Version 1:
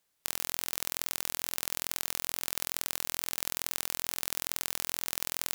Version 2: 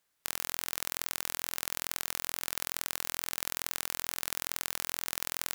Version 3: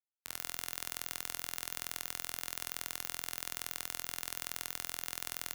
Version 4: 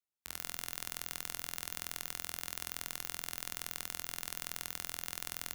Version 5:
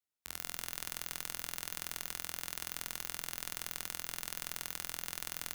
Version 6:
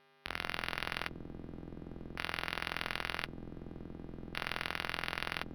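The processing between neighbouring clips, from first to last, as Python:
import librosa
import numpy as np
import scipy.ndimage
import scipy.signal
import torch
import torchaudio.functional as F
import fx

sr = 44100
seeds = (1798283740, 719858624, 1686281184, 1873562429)

y1 = fx.peak_eq(x, sr, hz=1500.0, db=4.0, octaves=1.2)
y1 = F.gain(torch.from_numpy(y1), -1.5).numpy()
y2 = fx.comb_fb(y1, sr, f0_hz=90.0, decay_s=0.74, harmonics='all', damping=0.0, mix_pct=50)
y2 = fx.band_widen(y2, sr, depth_pct=70)
y3 = fx.octave_divider(y2, sr, octaves=1, level_db=1.0)
y3 = F.gain(torch.from_numpy(y3), -1.0).numpy()
y4 = y3 + 10.0 ** (-13.5 / 20.0) * np.pad(y3, (int(290 * sr / 1000.0), 0))[:len(y3)]
y5 = fx.filter_lfo_lowpass(y4, sr, shape='square', hz=0.46, low_hz=310.0, high_hz=2900.0, q=1.5)
y5 = fx.dmg_buzz(y5, sr, base_hz=400.0, harmonics=23, level_db=-75.0, tilt_db=-2, odd_only=False)
y5 = np.interp(np.arange(len(y5)), np.arange(len(y5))[::6], y5[::6])
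y5 = F.gain(torch.from_numpy(y5), 9.0).numpy()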